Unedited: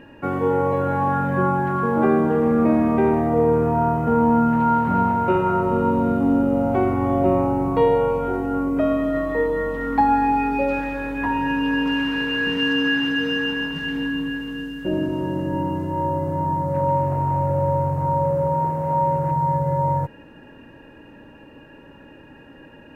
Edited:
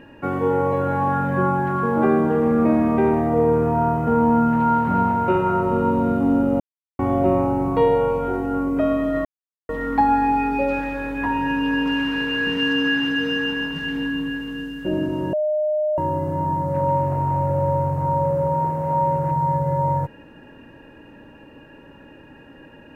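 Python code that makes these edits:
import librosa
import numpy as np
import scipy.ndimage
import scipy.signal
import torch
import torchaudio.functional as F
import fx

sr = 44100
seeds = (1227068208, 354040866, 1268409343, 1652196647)

y = fx.edit(x, sr, fx.silence(start_s=6.6, length_s=0.39),
    fx.silence(start_s=9.25, length_s=0.44),
    fx.bleep(start_s=15.33, length_s=0.65, hz=610.0, db=-18.0), tone=tone)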